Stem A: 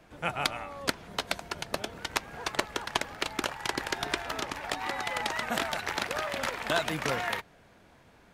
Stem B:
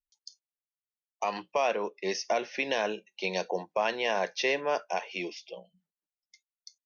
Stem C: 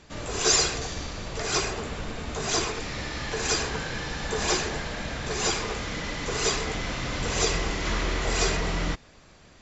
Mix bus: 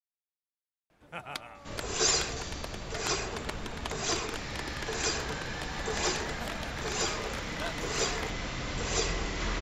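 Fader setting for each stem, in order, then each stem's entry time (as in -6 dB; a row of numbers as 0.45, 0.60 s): -9.5 dB, off, -5.0 dB; 0.90 s, off, 1.55 s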